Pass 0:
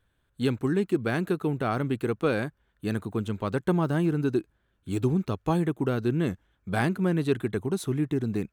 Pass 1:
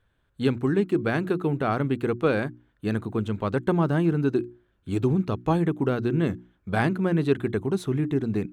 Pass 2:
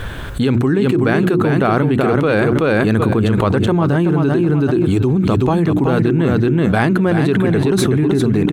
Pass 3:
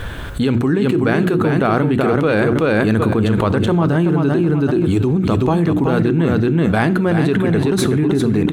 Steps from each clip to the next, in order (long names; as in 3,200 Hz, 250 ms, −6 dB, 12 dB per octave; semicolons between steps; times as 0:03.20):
high-shelf EQ 6,200 Hz −11.5 dB; mains-hum notches 60/120/180/240/300/360 Hz; level +3 dB
repeating echo 378 ms, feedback 16%, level −6 dB; envelope flattener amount 100%; level +3 dB
convolution reverb, pre-delay 3 ms, DRR 14 dB; level −1 dB